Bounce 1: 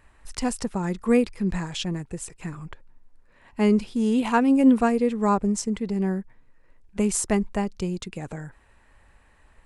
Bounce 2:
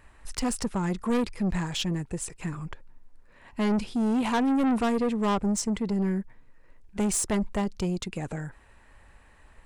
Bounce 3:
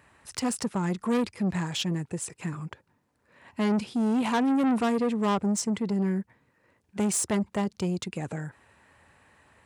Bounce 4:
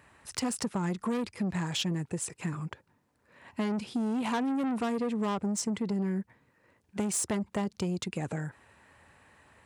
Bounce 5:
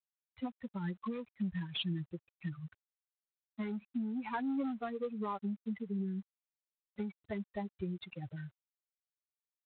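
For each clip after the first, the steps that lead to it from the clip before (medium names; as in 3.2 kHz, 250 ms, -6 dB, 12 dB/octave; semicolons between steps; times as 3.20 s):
saturation -23.5 dBFS, distortion -7 dB; trim +2 dB
high-pass 86 Hz 24 dB/octave
compression, threshold -27 dBFS, peak gain reduction 7 dB
expander on every frequency bin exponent 3; trim -1 dB; G.726 24 kbps 8 kHz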